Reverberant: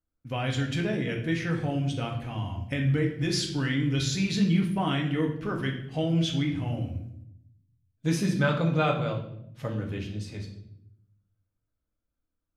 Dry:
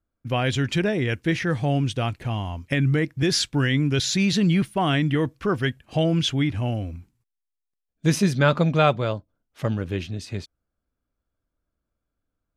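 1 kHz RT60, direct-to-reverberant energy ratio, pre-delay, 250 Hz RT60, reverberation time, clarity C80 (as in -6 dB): 0.65 s, 0.0 dB, 4 ms, 1.1 s, 0.75 s, 10.5 dB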